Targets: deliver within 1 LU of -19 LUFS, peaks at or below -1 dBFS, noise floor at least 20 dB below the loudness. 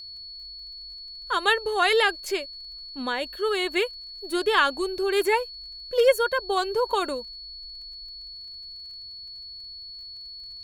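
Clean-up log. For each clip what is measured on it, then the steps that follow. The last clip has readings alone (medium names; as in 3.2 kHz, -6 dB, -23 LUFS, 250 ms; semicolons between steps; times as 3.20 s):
tick rate 24 per s; steady tone 4.4 kHz; tone level -38 dBFS; loudness -24.5 LUFS; peak level -7.0 dBFS; loudness target -19.0 LUFS
-> de-click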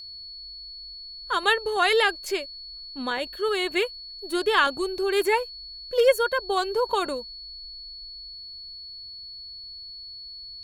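tick rate 0.47 per s; steady tone 4.4 kHz; tone level -38 dBFS
-> band-stop 4.4 kHz, Q 30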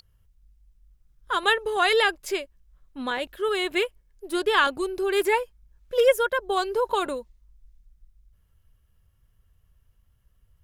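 steady tone not found; loudness -24.5 LUFS; peak level -7.0 dBFS; loudness target -19.0 LUFS
-> trim +5.5 dB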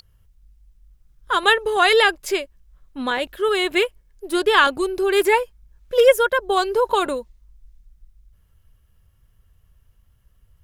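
loudness -19.0 LUFS; peak level -1.5 dBFS; noise floor -59 dBFS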